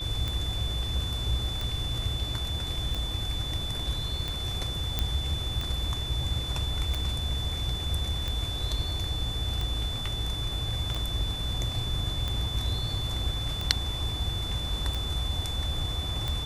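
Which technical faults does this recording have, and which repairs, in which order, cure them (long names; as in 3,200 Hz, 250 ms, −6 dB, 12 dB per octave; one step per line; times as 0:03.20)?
scratch tick 45 rpm −18 dBFS
whistle 3,500 Hz −34 dBFS
0:04.99: click −12 dBFS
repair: click removal
notch filter 3,500 Hz, Q 30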